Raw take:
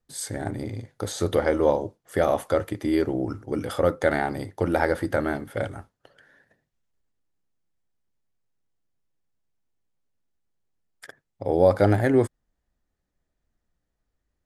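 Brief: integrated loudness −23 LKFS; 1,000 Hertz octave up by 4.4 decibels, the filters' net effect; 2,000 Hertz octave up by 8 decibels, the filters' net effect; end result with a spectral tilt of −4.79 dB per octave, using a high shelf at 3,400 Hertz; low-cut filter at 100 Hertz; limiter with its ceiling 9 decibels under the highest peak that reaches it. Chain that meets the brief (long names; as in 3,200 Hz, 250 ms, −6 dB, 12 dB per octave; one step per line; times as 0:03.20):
high-pass filter 100 Hz
parametric band 1,000 Hz +4 dB
parametric band 2,000 Hz +7.5 dB
high-shelf EQ 3,400 Hz +5.5 dB
level +2 dB
brickwall limiter −8 dBFS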